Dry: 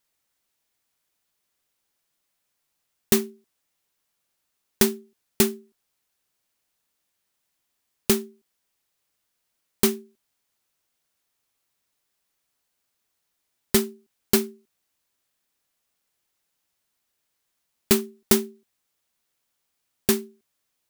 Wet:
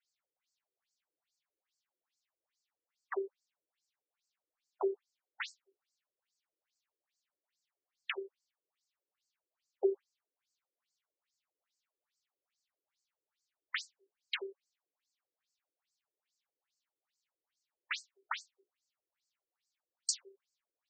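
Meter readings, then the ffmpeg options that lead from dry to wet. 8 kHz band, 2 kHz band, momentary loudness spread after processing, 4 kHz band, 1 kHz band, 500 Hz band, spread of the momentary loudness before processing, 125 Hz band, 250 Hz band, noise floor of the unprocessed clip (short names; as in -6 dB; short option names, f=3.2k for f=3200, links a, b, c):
-16.5 dB, -7.5 dB, 11 LU, -12.5 dB, -9.0 dB, -12.5 dB, 14 LU, under -40 dB, -22.5 dB, -78 dBFS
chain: -af "bandreject=f=60:t=h:w=6,bandreject=f=120:t=h:w=6,bandreject=f=180:t=h:w=6,bandreject=f=240:t=h:w=6,bandreject=f=300:t=h:w=6,bandreject=f=360:t=h:w=6,bandreject=f=420:t=h:w=6,bandreject=f=480:t=h:w=6,bandreject=f=540:t=h:w=6,afftfilt=real='re*between(b*sr/1024,380*pow(6100/380,0.5+0.5*sin(2*PI*2.4*pts/sr))/1.41,380*pow(6100/380,0.5+0.5*sin(2*PI*2.4*pts/sr))*1.41)':imag='im*between(b*sr/1024,380*pow(6100/380,0.5+0.5*sin(2*PI*2.4*pts/sr))/1.41,380*pow(6100/380,0.5+0.5*sin(2*PI*2.4*pts/sr))*1.41)':win_size=1024:overlap=0.75,volume=-3dB"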